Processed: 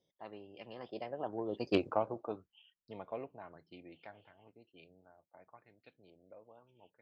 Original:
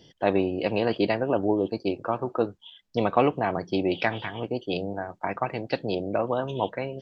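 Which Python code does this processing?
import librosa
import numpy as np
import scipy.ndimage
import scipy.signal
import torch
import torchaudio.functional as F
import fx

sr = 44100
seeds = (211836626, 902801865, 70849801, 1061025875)

y = fx.doppler_pass(x, sr, speed_mps=25, closest_m=2.6, pass_at_s=1.78)
y = fx.cheby_harmonics(y, sr, harmonics=(3,), levels_db=(-22,), full_scale_db=-15.0)
y = fx.bell_lfo(y, sr, hz=0.94, low_hz=540.0, high_hz=2600.0, db=8)
y = y * 10.0 ** (-1.5 / 20.0)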